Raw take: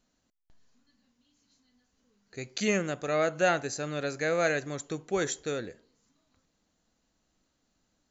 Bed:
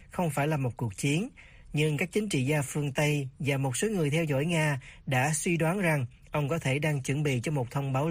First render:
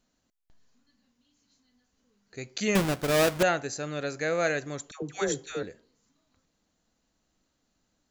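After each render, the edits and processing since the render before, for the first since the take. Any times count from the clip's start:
0:02.75–0:03.43: each half-wave held at its own peak
0:04.91–0:05.63: all-pass dispersion lows, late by 114 ms, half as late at 770 Hz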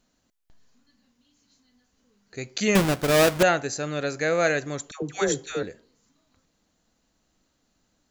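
level +4.5 dB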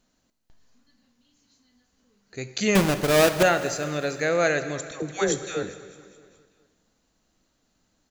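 repeating echo 207 ms, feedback 58%, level −18.5 dB
dense smooth reverb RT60 1.7 s, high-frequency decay 1×, DRR 11.5 dB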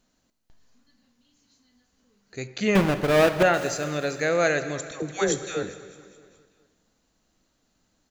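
0:02.47–0:03.54: bass and treble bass 0 dB, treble −11 dB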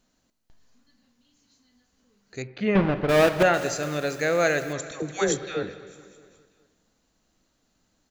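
0:02.42–0:03.09: high-frequency loss of the air 330 metres
0:03.83–0:04.73: hold until the input has moved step −43 dBFS
0:05.37–0:05.87: low-pass filter 4,500 Hz 24 dB per octave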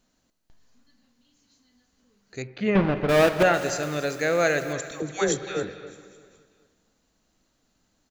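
single-tap delay 276 ms −16 dB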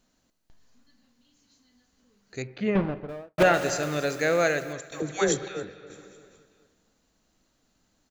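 0:02.39–0:03.38: fade out and dull
0:04.32–0:04.92: fade out, to −11 dB
0:05.48–0:05.90: clip gain −6 dB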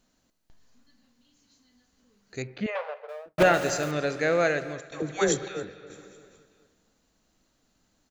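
0:02.66–0:03.26: linear-phase brick-wall high-pass 440 Hz
0:03.91–0:05.21: high-frequency loss of the air 92 metres

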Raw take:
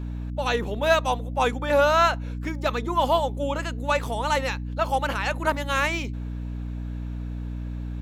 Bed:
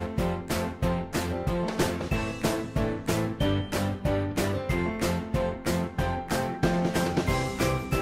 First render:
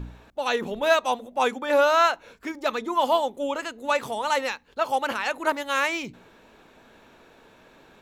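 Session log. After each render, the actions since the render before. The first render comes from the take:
hum removal 60 Hz, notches 5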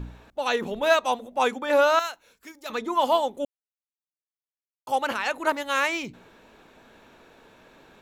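0:01.99–0:02.70: first-order pre-emphasis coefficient 0.8
0:03.45–0:04.87: silence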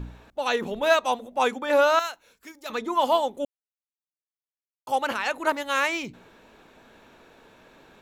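no processing that can be heard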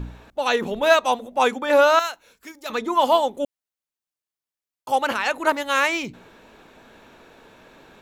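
level +4 dB

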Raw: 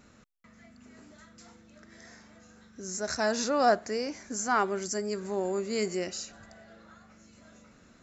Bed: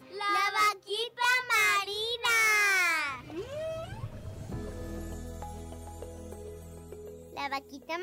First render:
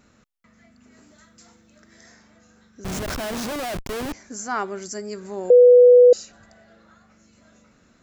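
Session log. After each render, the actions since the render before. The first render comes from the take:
0:00.92–0:02.12: high-shelf EQ 6,300 Hz +7.5 dB
0:02.84–0:04.13: comparator with hysteresis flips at −34 dBFS
0:05.50–0:06.13: beep over 492 Hz −7 dBFS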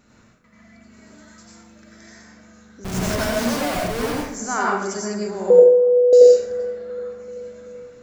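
feedback echo with a band-pass in the loop 384 ms, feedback 63%, band-pass 550 Hz, level −18.5 dB
dense smooth reverb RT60 0.69 s, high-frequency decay 0.7×, pre-delay 75 ms, DRR −4.5 dB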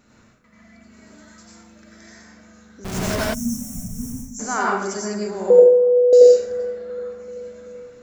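mains-hum notches 60/120/180 Hz
0:03.34–0:04.40: gain on a spectral selection 270–5,400 Hz −30 dB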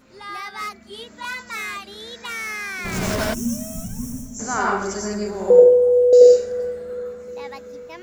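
mix in bed −4.5 dB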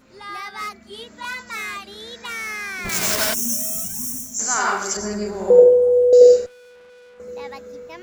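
0:02.89–0:04.97: spectral tilt +3.5 dB per octave
0:06.46–0:07.20: tube saturation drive 46 dB, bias 0.75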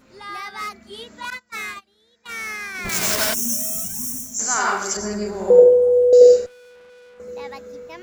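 0:01.30–0:02.75: noise gate −31 dBFS, range −24 dB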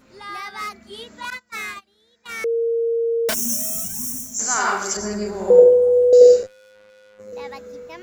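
0:02.44–0:03.29: beep over 462 Hz −17.5 dBFS
0:06.43–0:07.33: phases set to zero 104 Hz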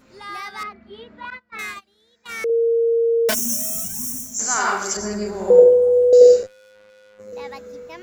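0:00.63–0:01.59: high-frequency loss of the air 400 metres
0:02.49–0:03.39: comb filter 4.7 ms, depth 61%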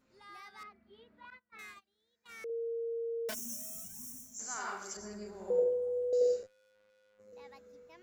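level −19 dB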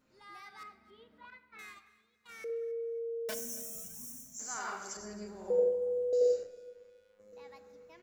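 repeating echo 273 ms, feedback 32%, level −21 dB
rectangular room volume 1,100 cubic metres, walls mixed, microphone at 0.54 metres

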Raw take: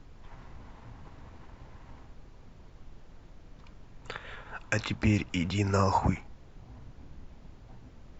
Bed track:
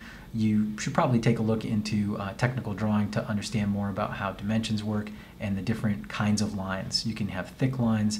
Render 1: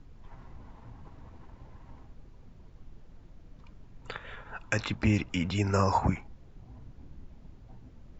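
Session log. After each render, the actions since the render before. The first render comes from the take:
broadband denoise 6 dB, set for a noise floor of −53 dBFS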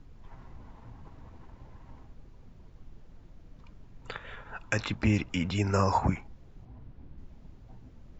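0:06.65–0:07.18: high-frequency loss of the air 150 metres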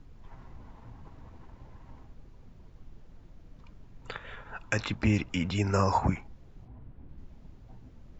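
0:06.68–0:07.09: Bessel low-pass filter 2,800 Hz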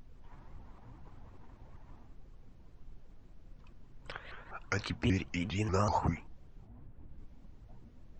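flanger 1.7 Hz, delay 0.7 ms, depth 3.7 ms, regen +77%
pitch modulation by a square or saw wave saw up 5.1 Hz, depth 250 cents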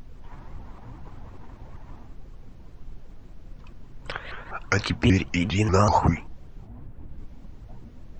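level +11 dB

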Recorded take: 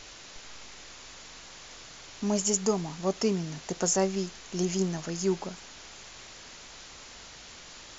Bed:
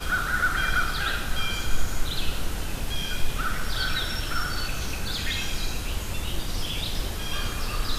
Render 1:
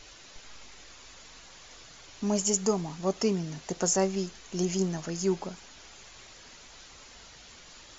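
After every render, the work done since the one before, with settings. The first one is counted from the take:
broadband denoise 6 dB, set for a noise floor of −48 dBFS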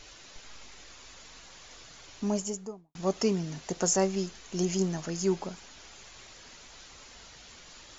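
0:02.11–0:02.95: fade out and dull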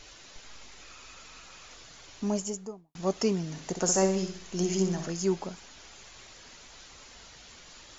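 0:00.81–0:01.74: hollow resonant body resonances 1,300/2,500 Hz, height 10 dB, ringing for 25 ms
0:03.49–0:05.12: flutter between parallel walls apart 10.8 metres, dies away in 0.51 s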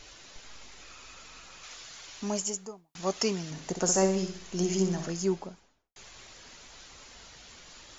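0:01.63–0:03.51: tilt shelving filter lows −5 dB, about 700 Hz
0:05.13–0:05.96: fade out and dull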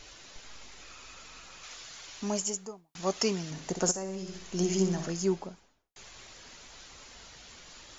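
0:03.91–0:04.41: downward compressor 4 to 1, threshold −35 dBFS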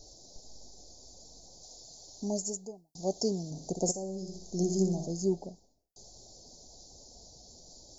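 elliptic band-stop filter 730–4,600 Hz, stop band 40 dB
dynamic equaliser 5,400 Hz, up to −5 dB, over −51 dBFS, Q 1.9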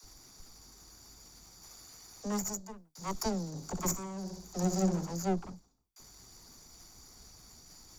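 lower of the sound and its delayed copy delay 0.86 ms
all-pass dispersion lows, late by 41 ms, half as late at 340 Hz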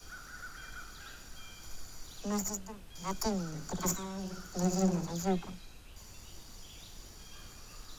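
mix in bed −23 dB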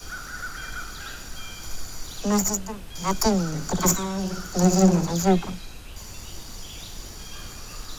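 level +12 dB

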